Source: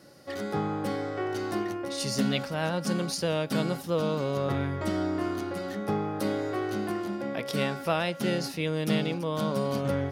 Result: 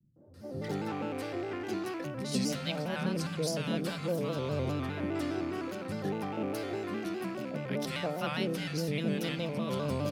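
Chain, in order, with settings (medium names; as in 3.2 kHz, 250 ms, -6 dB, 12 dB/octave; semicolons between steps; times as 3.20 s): rattle on loud lows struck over -38 dBFS, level -35 dBFS; peaking EQ 170 Hz +2.5 dB 2 oct; three bands offset in time lows, mids, highs 160/340 ms, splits 160/790 Hz; reverberation RT60 3.5 s, pre-delay 3 ms, DRR 17.5 dB; vibrato with a chosen wave square 4.9 Hz, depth 100 cents; trim -4.5 dB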